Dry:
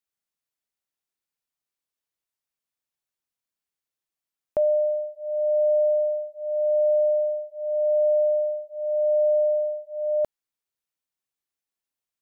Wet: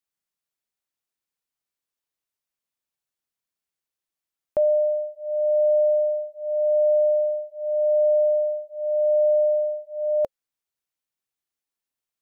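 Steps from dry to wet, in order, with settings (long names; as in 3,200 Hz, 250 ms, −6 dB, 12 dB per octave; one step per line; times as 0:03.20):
dynamic equaliser 540 Hz, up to +5 dB, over −37 dBFS, Q 7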